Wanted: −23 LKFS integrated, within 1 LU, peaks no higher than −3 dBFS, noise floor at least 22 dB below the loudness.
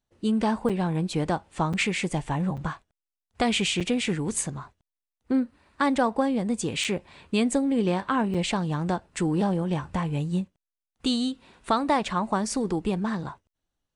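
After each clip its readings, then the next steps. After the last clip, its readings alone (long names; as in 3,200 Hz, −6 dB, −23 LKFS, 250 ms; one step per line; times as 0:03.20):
number of dropouts 6; longest dropout 6.3 ms; integrated loudness −27.0 LKFS; sample peak −10.5 dBFS; target loudness −23.0 LKFS
→ repair the gap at 0:00.69/0:01.73/0:02.57/0:03.80/0:06.84/0:08.34, 6.3 ms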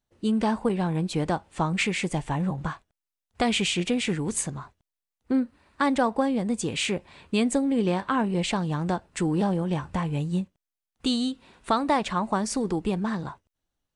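number of dropouts 0; integrated loudness −27.0 LKFS; sample peak −10.5 dBFS; target loudness −23.0 LKFS
→ level +4 dB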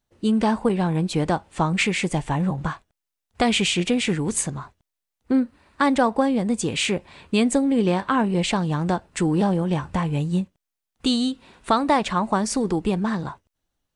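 integrated loudness −23.0 LKFS; sample peak −6.5 dBFS; background noise floor −84 dBFS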